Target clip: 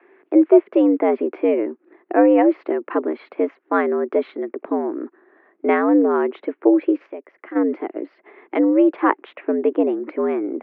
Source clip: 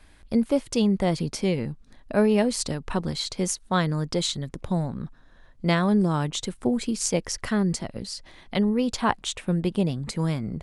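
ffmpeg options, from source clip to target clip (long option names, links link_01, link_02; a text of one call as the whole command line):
ffmpeg -i in.wav -filter_complex "[0:a]highpass=frequency=200:width_type=q:width=0.5412,highpass=frequency=200:width_type=q:width=1.307,lowpass=frequency=2200:width_type=q:width=0.5176,lowpass=frequency=2200:width_type=q:width=0.7071,lowpass=frequency=2200:width_type=q:width=1.932,afreqshift=87,asplit=3[link_01][link_02][link_03];[link_01]afade=type=out:start_time=7.05:duration=0.02[link_04];[link_02]acompressor=threshold=-51dB:ratio=2,afade=type=in:start_time=7.05:duration=0.02,afade=type=out:start_time=7.55:duration=0.02[link_05];[link_03]afade=type=in:start_time=7.55:duration=0.02[link_06];[link_04][link_05][link_06]amix=inputs=3:normalize=0,equalizer=frequency=380:width_type=o:width=0.49:gain=10.5,volume=4.5dB" out.wav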